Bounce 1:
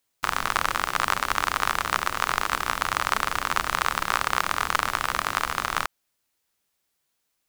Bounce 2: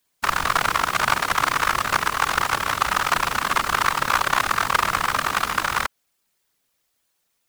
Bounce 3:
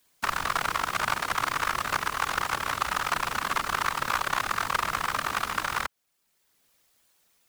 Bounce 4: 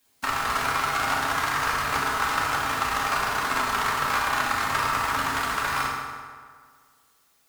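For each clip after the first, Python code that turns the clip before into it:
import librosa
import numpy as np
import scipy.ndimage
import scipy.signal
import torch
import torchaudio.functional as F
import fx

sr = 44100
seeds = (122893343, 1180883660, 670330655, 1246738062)

y1 = fx.whisperise(x, sr, seeds[0])
y1 = F.gain(torch.from_numpy(y1), 4.0).numpy()
y2 = fx.band_squash(y1, sr, depth_pct=40)
y2 = F.gain(torch.from_numpy(y2), -7.0).numpy()
y3 = fx.rev_fdn(y2, sr, rt60_s=1.8, lf_ratio=0.9, hf_ratio=0.65, size_ms=22.0, drr_db=-4.0)
y3 = F.gain(torch.from_numpy(y3), -2.0).numpy()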